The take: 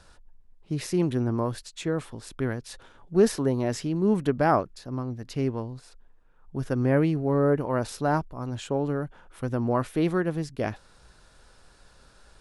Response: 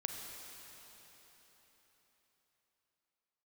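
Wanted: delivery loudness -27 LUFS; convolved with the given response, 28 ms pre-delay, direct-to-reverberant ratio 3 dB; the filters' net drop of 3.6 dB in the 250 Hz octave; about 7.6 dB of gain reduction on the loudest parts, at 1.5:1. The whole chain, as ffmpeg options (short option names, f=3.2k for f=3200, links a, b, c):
-filter_complex "[0:a]equalizer=f=250:t=o:g=-5,acompressor=threshold=-38dB:ratio=1.5,asplit=2[a][b];[1:a]atrim=start_sample=2205,adelay=28[c];[b][c]afir=irnorm=-1:irlink=0,volume=-3.5dB[d];[a][d]amix=inputs=2:normalize=0,volume=6dB"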